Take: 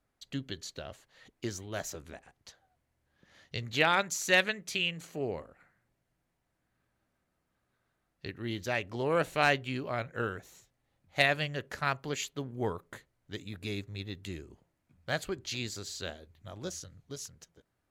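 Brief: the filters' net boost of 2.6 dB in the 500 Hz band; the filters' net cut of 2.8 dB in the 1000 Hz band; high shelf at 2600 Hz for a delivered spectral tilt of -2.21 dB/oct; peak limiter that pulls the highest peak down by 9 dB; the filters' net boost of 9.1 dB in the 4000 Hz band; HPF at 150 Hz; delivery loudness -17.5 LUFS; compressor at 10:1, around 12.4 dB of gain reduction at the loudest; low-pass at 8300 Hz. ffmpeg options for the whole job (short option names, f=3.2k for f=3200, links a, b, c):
-af "highpass=150,lowpass=8.3k,equalizer=f=500:t=o:g=5,equalizer=f=1k:t=o:g=-8,highshelf=f=2.6k:g=4.5,equalizer=f=4k:t=o:g=8.5,acompressor=threshold=-28dB:ratio=10,volume=18.5dB,alimiter=limit=-2.5dB:level=0:latency=1"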